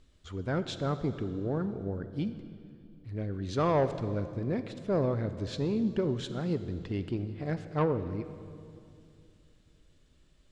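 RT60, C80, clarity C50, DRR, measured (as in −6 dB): 2.5 s, 12.0 dB, 11.5 dB, 11.0 dB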